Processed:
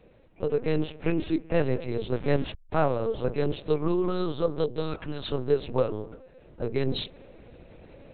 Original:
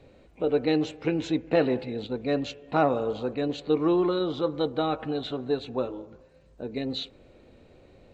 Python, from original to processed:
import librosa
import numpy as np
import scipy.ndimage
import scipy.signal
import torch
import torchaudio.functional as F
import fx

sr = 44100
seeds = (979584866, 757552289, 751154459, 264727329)

y = fx.delta_hold(x, sr, step_db=-37.0, at=(2.15, 2.95))
y = fx.rider(y, sr, range_db=10, speed_s=0.5)
y = fx.peak_eq(y, sr, hz=fx.line((4.63, 1500.0), (5.28, 340.0)), db=-15.0, octaves=1.2, at=(4.63, 5.28), fade=0.02)
y = fx.lpc_vocoder(y, sr, seeds[0], excitation='pitch_kept', order=8)
y = y * librosa.db_to_amplitude(1.0)